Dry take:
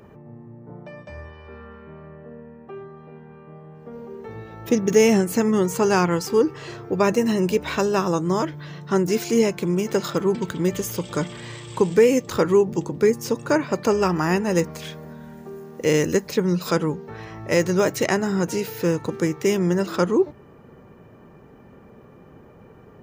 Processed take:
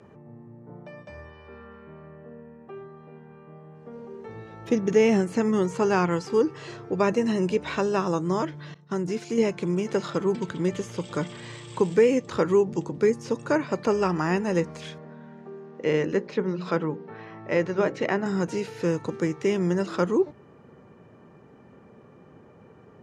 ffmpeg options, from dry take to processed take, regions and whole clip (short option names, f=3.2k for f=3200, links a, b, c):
-filter_complex "[0:a]asettb=1/sr,asplit=3[a][b][c];[a]atrim=end=8.744[d];[b]atrim=start=8.74:end=9.38,asetpts=PTS-STARTPTS,afade=t=in:d=0.004:c=qsin,afade=t=out:st=0.636:d=0.004:c=qsin,bass=f=250:g=3,treble=f=4k:g=1,acompressor=threshold=-23dB:ratio=2:attack=3.2:release=140:knee=1:detection=peak,agate=range=-33dB:threshold=-26dB:ratio=3:release=100:detection=peak[e];[c]atrim=start=9.376[f];[d][e]acrossfade=d=0.004:c1=hsin:c2=qsin[g];[g][f]acrossfade=d=0.004:c1=qsin:c2=hsin,asettb=1/sr,asplit=3[h][i][j];[h]atrim=end=14.984[k];[i]atrim=start=14.98:end=18.26,asetpts=PTS-STARTPTS,afade=t=in:d=0.004:c=qsin,afade=t=out:st=3.276:d=0.004:c=qsin,highpass=130,lowpass=2.9k,bandreject=f=60:t=h:w=6,bandreject=f=120:t=h:w=6,bandreject=f=180:t=h:w=6,bandreject=f=240:t=h:w=6,bandreject=f=300:t=h:w=6,bandreject=f=360:t=h:w=6,bandreject=f=420:t=h:w=6,bandreject=f=480:t=h:w=6,bandreject=f=540:t=h:w=6[l];[j]atrim=start=18.256[m];[k][l]acrossfade=d=0.004:c1=hsin:c2=qsin[n];[n][m]acrossfade=d=0.004:c1=qsin:c2=hsin,highpass=87,acrossover=split=3800[o][p];[p]acompressor=threshold=-40dB:ratio=4:attack=1:release=60[q];[o][q]amix=inputs=2:normalize=0,lowpass=f=9.4k:w=0.5412,lowpass=f=9.4k:w=1.3066,volume=-3.5dB"